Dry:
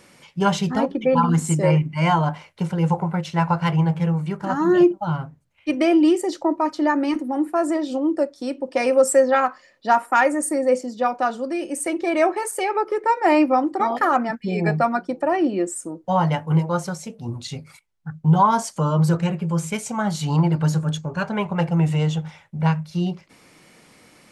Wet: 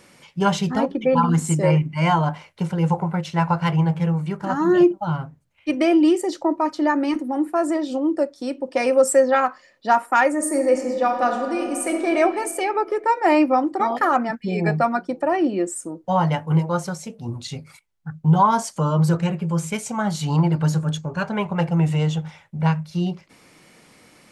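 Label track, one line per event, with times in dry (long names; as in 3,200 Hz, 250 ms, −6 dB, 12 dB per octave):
10.330000	12.140000	thrown reverb, RT60 2.2 s, DRR 3 dB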